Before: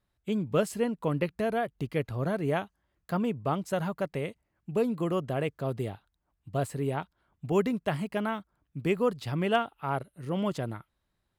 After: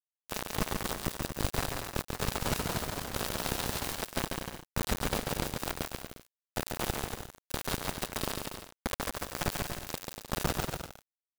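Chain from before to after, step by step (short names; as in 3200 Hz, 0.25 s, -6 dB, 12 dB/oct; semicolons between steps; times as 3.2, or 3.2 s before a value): HPF 47 Hz 24 dB/oct; tilt +2.5 dB/oct; comb 5 ms, depth 99%; limiter -18.5 dBFS, peak gain reduction 9.5 dB; sample-and-hold 41×; wrapped overs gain 27.5 dB; fixed phaser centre 930 Hz, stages 4; bit-crush 5-bit; bouncing-ball echo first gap 0.14 s, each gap 0.7×, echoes 5; 1.87–4.01 echoes that change speed 0.266 s, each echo +1 st, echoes 3; gain +4 dB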